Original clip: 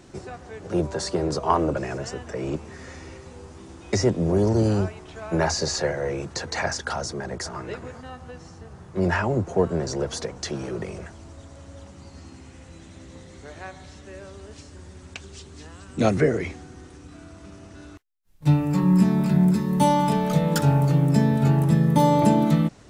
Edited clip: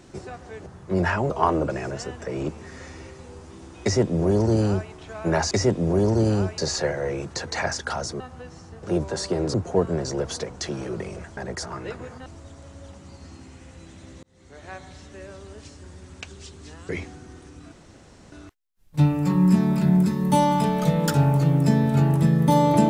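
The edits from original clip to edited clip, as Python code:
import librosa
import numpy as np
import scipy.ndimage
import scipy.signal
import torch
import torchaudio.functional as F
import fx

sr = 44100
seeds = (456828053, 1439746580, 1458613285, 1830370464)

y = fx.edit(x, sr, fx.swap(start_s=0.66, length_s=0.71, other_s=8.72, other_length_s=0.64),
    fx.duplicate(start_s=3.9, length_s=1.07, to_s=5.58),
    fx.move(start_s=7.2, length_s=0.89, to_s=11.19),
    fx.fade_in_span(start_s=13.16, length_s=0.53),
    fx.cut(start_s=15.82, length_s=0.55),
    fx.room_tone_fill(start_s=17.2, length_s=0.6), tone=tone)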